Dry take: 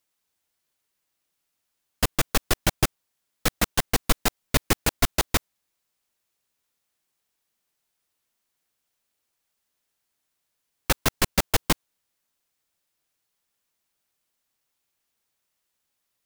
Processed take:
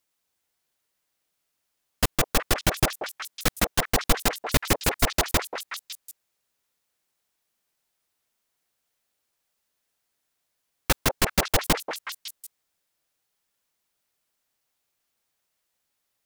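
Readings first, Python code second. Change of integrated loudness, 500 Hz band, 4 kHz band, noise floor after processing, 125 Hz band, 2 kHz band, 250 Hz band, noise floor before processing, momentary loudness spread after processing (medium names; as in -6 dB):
0.0 dB, +1.5 dB, +0.5 dB, -79 dBFS, 0.0 dB, +1.0 dB, 0.0 dB, -79 dBFS, 13 LU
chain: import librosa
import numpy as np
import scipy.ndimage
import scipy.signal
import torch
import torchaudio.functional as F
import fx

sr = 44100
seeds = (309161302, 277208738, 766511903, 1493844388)

y = fx.echo_stepped(x, sr, ms=185, hz=610.0, octaves=1.4, feedback_pct=70, wet_db=-2.0)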